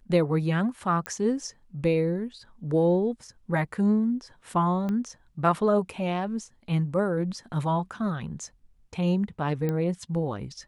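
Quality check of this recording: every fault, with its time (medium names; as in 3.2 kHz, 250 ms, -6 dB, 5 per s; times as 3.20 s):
1.06 s: pop -15 dBFS
4.89 s: pop -20 dBFS
9.69 s: pop -17 dBFS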